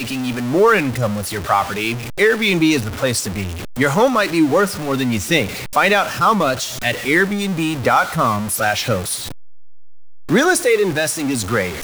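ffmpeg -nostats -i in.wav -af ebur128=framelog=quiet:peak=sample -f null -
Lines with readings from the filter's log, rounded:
Integrated loudness:
  I:         -17.2 LUFS
  Threshold: -27.4 LUFS
Loudness range:
  LRA:         2.3 LU
  Threshold: -37.5 LUFS
  LRA low:   -18.8 LUFS
  LRA high:  -16.6 LUFS
Sample peak:
  Peak:       -2.5 dBFS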